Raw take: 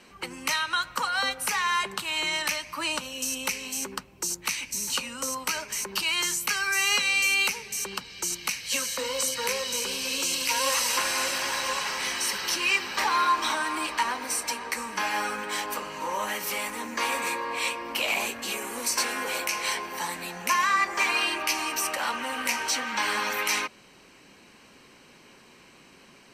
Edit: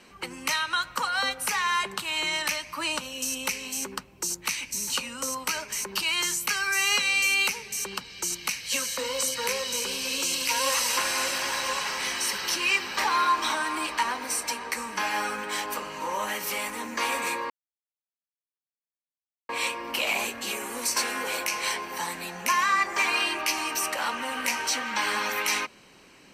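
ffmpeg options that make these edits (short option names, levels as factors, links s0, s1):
-filter_complex "[0:a]asplit=2[s0][s1];[s0]atrim=end=17.5,asetpts=PTS-STARTPTS,afade=t=out:st=17.496:d=0.004:c=hsin,apad=pad_dur=1.99[s2];[s1]atrim=start=17.5,asetpts=PTS-STARTPTS,afade=t=in:d=0.004:c=hsin[s3];[s2][s3]concat=n=2:v=0:a=1"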